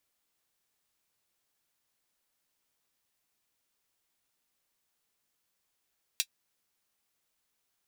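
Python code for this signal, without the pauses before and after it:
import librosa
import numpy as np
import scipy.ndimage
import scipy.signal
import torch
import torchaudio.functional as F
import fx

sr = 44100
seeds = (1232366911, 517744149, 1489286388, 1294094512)

y = fx.drum_hat(sr, length_s=0.24, from_hz=3100.0, decay_s=0.07)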